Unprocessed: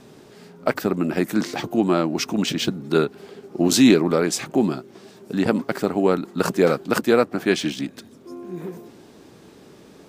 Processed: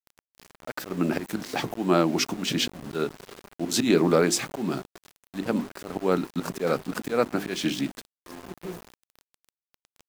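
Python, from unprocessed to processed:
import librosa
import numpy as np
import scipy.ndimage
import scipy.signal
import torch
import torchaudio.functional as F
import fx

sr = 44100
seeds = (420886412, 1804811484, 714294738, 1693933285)

y = fx.auto_swell(x, sr, attack_ms=195.0)
y = fx.hum_notches(y, sr, base_hz=50, count=8)
y = np.where(np.abs(y) >= 10.0 ** (-37.5 / 20.0), y, 0.0)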